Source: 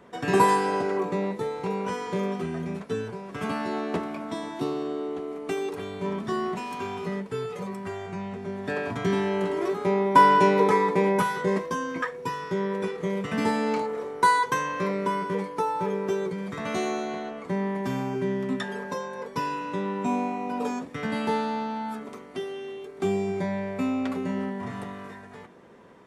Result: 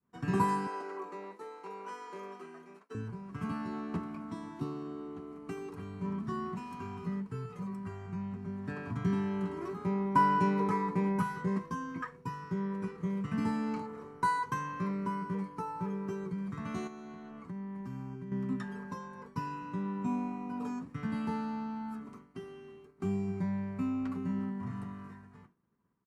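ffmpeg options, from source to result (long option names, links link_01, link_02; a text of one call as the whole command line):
ffmpeg -i in.wav -filter_complex "[0:a]asettb=1/sr,asplit=3[link_01][link_02][link_03];[link_01]atrim=end=0.674[link_04];[link_02]atrim=start=0.67:end=2.95,asetpts=PTS-STARTPTS,afade=type=in:duration=0.004:curve=qsin,afade=type=out:start_time=2.276:duration=0.004:curve=qsin,highpass=frequency=370:width=0.5412,highpass=frequency=370:width=1.3066[link_05];[link_03]atrim=start=2.946[link_06];[link_04][link_05]acrossfade=duration=0.004:curve1=hsin:curve2=qsin[link_07];[link_07][link_06]acrossfade=duration=0.004:curve1=qsin:curve2=hsin,asettb=1/sr,asplit=3[link_08][link_09][link_10];[link_08]atrim=end=16.874[link_11];[link_09]atrim=start=16.87:end=18.32,asetpts=PTS-STARTPTS,afade=type=in:duration=0.004:curve=qsin,afade=type=out:start_time=1.446:duration=0.004:curve=qsin,acompressor=threshold=-33dB:ratio=6:attack=3.2:release=140:knee=1:detection=peak[link_12];[link_10]atrim=start=18.316[link_13];[link_11][link_12]acrossfade=duration=0.004:curve1=hsin:curve2=qsin[link_14];[link_14][link_13]acrossfade=duration=0.004:curve1=qsin:curve2=hsin,firequalizer=gain_entry='entry(140,0);entry(530,-20);entry(1100,-7);entry(1900,-14)':delay=0.05:min_phase=1,agate=range=-33dB:threshold=-47dB:ratio=3:detection=peak,bandreject=frequency=3500:width=7.3" out.wav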